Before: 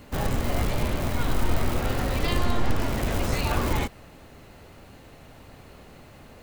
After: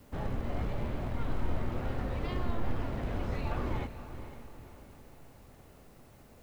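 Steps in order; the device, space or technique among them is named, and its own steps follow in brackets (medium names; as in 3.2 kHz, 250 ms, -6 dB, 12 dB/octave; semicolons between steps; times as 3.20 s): cassette deck with a dirty head (tape spacing loss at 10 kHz 26 dB; wow and flutter; white noise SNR 35 dB); echo that smears into a reverb 486 ms, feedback 45%, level -11.5 dB; trim -8 dB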